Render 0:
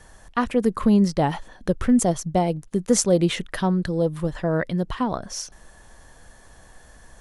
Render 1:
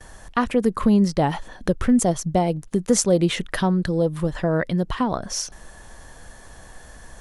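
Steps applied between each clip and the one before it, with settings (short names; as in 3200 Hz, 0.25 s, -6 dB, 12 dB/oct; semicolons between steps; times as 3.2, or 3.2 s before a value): gate with hold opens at -44 dBFS; in parallel at +2.5 dB: compressor, threshold -28 dBFS, peak gain reduction 14.5 dB; on the sum: gain -2 dB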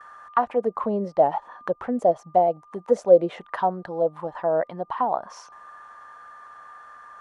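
whine 1200 Hz -52 dBFS; auto-wah 560–1300 Hz, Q 4.5, down, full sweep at -13.5 dBFS; gain +8.5 dB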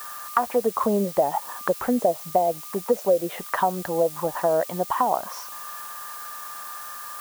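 compressor, threshold -23 dBFS, peak gain reduction 13.5 dB; added noise blue -45 dBFS; gain +5.5 dB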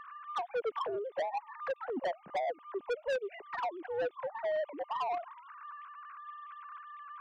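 sine-wave speech; soft clip -23.5 dBFS, distortion -5 dB; gain -6 dB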